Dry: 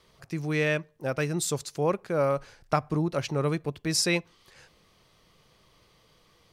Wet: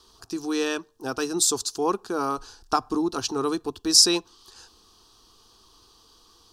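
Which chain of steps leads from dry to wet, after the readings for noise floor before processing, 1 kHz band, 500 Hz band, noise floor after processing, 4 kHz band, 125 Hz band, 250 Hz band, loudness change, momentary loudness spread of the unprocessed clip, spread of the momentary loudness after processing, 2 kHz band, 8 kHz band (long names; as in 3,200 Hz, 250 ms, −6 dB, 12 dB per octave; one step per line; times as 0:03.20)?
−63 dBFS, +4.5 dB, −0.5 dB, −58 dBFS, +10.5 dB, −13.5 dB, +3.5 dB, +4.5 dB, 5 LU, 15 LU, −3.5 dB, +10.0 dB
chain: parametric band 5,000 Hz +8 dB 1.6 octaves
phaser with its sweep stopped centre 570 Hz, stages 6
level +5.5 dB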